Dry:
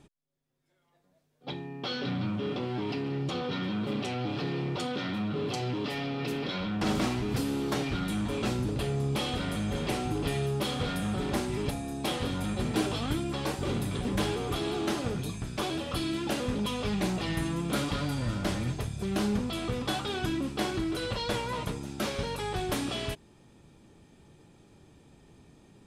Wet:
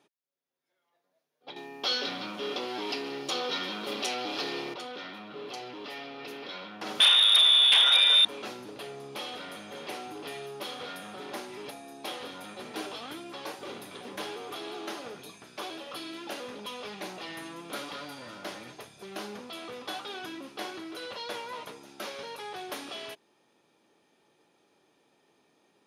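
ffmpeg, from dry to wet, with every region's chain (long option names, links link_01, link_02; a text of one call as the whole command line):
ffmpeg -i in.wav -filter_complex "[0:a]asettb=1/sr,asplit=3[link_01][link_02][link_03];[link_01]atrim=end=1.564[link_04];[link_02]atrim=start=1.56:end=4.74,asetpts=PTS-STARTPTS,afade=type=in:duration=0.004:curve=qsin,afade=type=out:start_time=3.176:duration=0.004:curve=qsin,bass=frequency=250:gain=-1,treble=frequency=4000:gain=12,acontrast=85,highpass=160[link_05];[link_03]atrim=start=4.736[link_06];[link_04][link_05]acrossfade=duration=0.004:curve1=hsin:curve2=qsin[link_07];[link_07][link_06]acrossfade=duration=0.004:curve1=qsin:curve2=hsin,asettb=1/sr,asplit=3[link_08][link_09][link_10];[link_08]atrim=end=7.004[link_11];[link_09]atrim=start=7:end=8.25,asetpts=PTS-STARTPTS,afade=type=in:duration=0.004:curve=qsin,afade=type=out:start_time=1.246:duration=0.004:curve=qsin,lowpass=frequency=3200:width_type=q:width=0.5098,lowpass=frequency=3200:width_type=q:width=0.6013,lowpass=frequency=3200:width_type=q:width=0.9,lowpass=frequency=3200:width_type=q:width=2.563,afreqshift=-3800,acontrast=86,aeval=exprs='0.299*sin(PI/2*1.78*val(0)/0.299)':channel_layout=same[link_12];[link_10]atrim=start=8.246[link_13];[link_11][link_12]acrossfade=duration=0.004:curve1=hsin:curve2=qsin[link_14];[link_14][link_13]acrossfade=duration=0.004:curve1=qsin:curve2=hsin,highpass=440,equalizer=frequency=7900:width_type=o:width=0.2:gain=-13,volume=-4dB" out.wav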